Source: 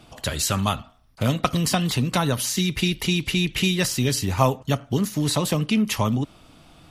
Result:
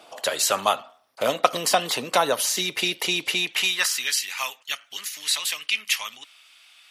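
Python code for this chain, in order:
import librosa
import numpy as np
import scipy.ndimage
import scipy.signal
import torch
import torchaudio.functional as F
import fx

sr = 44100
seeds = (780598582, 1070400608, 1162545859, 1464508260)

y = fx.filter_sweep_highpass(x, sr, from_hz=550.0, to_hz=2200.0, start_s=3.3, end_s=4.25, q=1.6)
y = y * librosa.db_to_amplitude(2.0)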